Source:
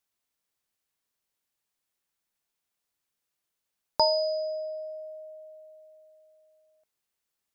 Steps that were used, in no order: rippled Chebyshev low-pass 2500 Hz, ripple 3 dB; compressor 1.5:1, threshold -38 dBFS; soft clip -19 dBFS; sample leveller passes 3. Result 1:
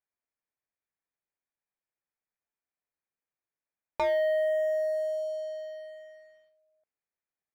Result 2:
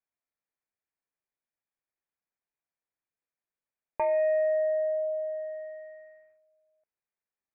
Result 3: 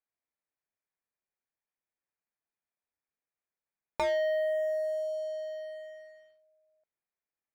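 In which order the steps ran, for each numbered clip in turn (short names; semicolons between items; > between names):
soft clip > compressor > rippled Chebyshev low-pass > sample leveller; compressor > soft clip > sample leveller > rippled Chebyshev low-pass; rippled Chebyshev low-pass > soft clip > sample leveller > compressor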